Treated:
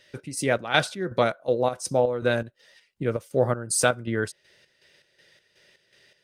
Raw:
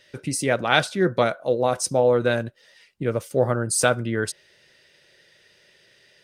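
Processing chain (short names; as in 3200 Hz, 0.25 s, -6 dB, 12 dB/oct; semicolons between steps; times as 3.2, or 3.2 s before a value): chopper 2.7 Hz, depth 60%, duty 55%; gain -1.5 dB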